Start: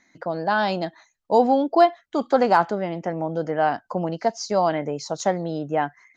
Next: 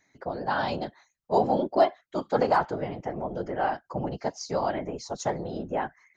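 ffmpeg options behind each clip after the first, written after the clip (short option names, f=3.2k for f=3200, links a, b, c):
-af "afftfilt=real='hypot(re,im)*cos(2*PI*random(0))':imag='hypot(re,im)*sin(2*PI*random(1))':win_size=512:overlap=0.75"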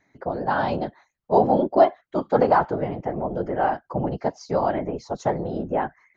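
-af "lowpass=f=1.4k:p=1,volume=6dB"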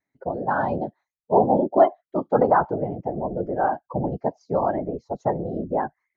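-af "afftdn=nr=19:nf=-29"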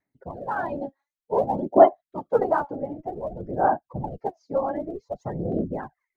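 -af "aphaser=in_gain=1:out_gain=1:delay=3.7:decay=0.69:speed=0.54:type=sinusoidal,volume=-7dB"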